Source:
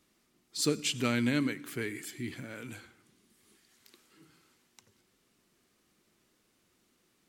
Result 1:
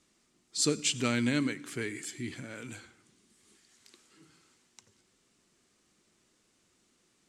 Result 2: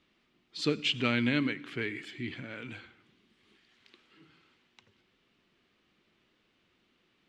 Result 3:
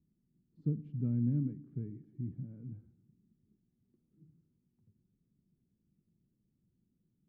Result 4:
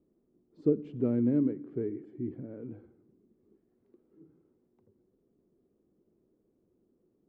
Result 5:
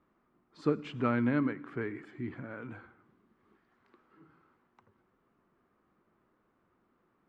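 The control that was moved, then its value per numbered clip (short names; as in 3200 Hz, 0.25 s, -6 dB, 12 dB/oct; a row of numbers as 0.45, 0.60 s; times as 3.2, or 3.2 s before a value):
synth low-pass, frequency: 7900, 3100, 160, 420, 1200 Hz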